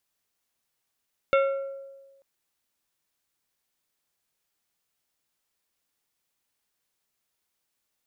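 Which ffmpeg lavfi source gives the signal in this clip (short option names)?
-f lavfi -i "aevalsrc='0.141*pow(10,-3*t/1.31)*sin(2*PI*547*t)+0.0794*pow(10,-3*t/0.69)*sin(2*PI*1367.5*t)+0.0447*pow(10,-3*t/0.496)*sin(2*PI*2188*t)+0.0251*pow(10,-3*t/0.425)*sin(2*PI*2735*t)+0.0141*pow(10,-3*t/0.353)*sin(2*PI*3555.5*t)':d=0.89:s=44100"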